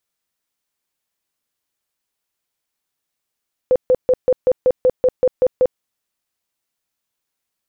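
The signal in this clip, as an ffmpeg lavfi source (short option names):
-f lavfi -i "aevalsrc='0.335*sin(2*PI*508*mod(t,0.19))*lt(mod(t,0.19),24/508)':d=2.09:s=44100"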